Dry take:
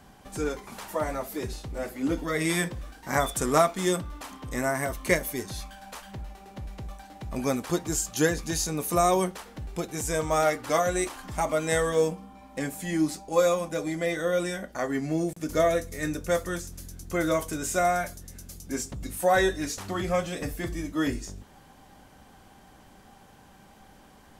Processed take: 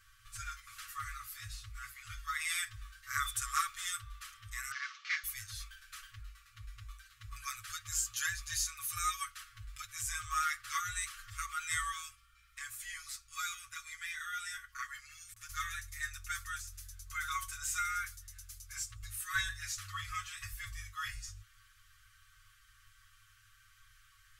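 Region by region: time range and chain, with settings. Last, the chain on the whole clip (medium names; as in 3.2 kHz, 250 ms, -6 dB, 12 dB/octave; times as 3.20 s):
4.71–5.24 s: CVSD coder 32 kbps + high-pass 790 Hz 24 dB/octave
whole clip: FFT band-reject 110–1100 Hz; comb 7.1 ms, depth 89%; trim -7.5 dB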